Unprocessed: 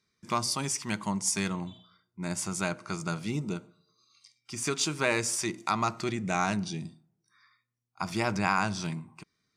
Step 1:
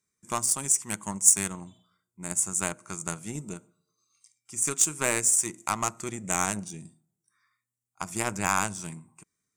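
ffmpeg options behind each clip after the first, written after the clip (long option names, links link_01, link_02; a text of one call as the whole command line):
ffmpeg -i in.wav -af "aeval=exprs='0.316*(cos(1*acos(clip(val(0)/0.316,-1,1)))-cos(1*PI/2))+0.0282*(cos(7*acos(clip(val(0)/0.316,-1,1)))-cos(7*PI/2))':channel_layout=same,highshelf=frequency=5900:width_type=q:width=3:gain=10,volume=1.5dB" out.wav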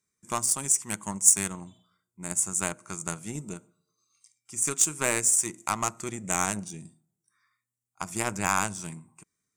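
ffmpeg -i in.wav -af anull out.wav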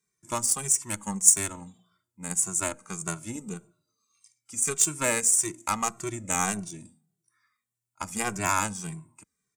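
ffmpeg -i in.wav -filter_complex "[0:a]asplit=2[link_01][link_02];[link_02]adelay=2.1,afreqshift=-1.7[link_03];[link_01][link_03]amix=inputs=2:normalize=1,volume=3.5dB" out.wav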